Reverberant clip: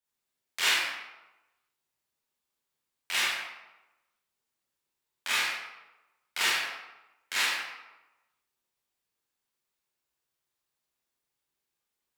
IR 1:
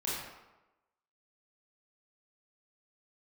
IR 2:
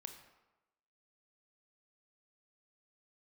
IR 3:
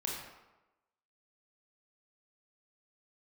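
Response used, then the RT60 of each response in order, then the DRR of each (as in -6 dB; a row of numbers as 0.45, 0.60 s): 1; 1.0, 1.0, 1.0 s; -8.0, 5.5, -3.0 dB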